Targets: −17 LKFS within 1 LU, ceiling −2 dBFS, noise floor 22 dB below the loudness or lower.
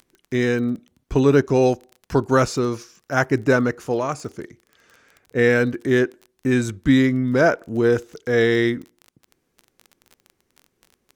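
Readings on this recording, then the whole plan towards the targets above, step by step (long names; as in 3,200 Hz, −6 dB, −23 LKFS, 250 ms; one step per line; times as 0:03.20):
crackle rate 21 per second; integrated loudness −20.5 LKFS; sample peak −3.5 dBFS; target loudness −17.0 LKFS
→ click removal
level +3.5 dB
brickwall limiter −2 dBFS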